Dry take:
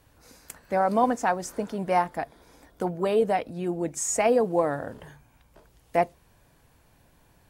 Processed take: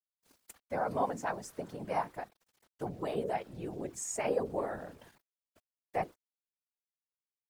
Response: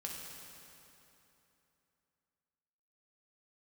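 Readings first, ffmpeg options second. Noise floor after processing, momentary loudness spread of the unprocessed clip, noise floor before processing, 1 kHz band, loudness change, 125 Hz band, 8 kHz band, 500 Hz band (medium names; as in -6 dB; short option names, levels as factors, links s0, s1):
under -85 dBFS, 12 LU, -61 dBFS, -10.5 dB, -10.5 dB, -8.5 dB, -10.0 dB, -10.5 dB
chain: -af "bandreject=f=50:t=h:w=6,bandreject=f=100:t=h:w=6,bandreject=f=150:t=h:w=6,bandreject=f=200:t=h:w=6,bandreject=f=250:t=h:w=6,bandreject=f=300:t=h:w=6,bandreject=f=350:t=h:w=6,bandreject=f=400:t=h:w=6,bandreject=f=450:t=h:w=6,aeval=exprs='val(0)*gte(abs(val(0)),0.00473)':c=same,afftfilt=real='hypot(re,im)*cos(2*PI*random(0))':imag='hypot(re,im)*sin(2*PI*random(1))':win_size=512:overlap=0.75,volume=0.631"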